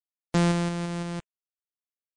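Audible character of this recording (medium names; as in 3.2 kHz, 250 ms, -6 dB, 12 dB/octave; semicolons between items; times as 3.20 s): a buzz of ramps at a fixed pitch in blocks of 256 samples; tremolo triangle 1 Hz, depth 45%; a quantiser's noise floor 12-bit, dither none; MP3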